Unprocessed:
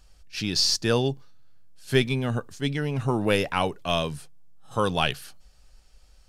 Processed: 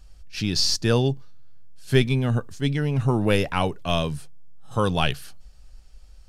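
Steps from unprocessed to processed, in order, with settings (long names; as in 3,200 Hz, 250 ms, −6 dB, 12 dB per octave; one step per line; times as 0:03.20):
low-shelf EQ 180 Hz +8.5 dB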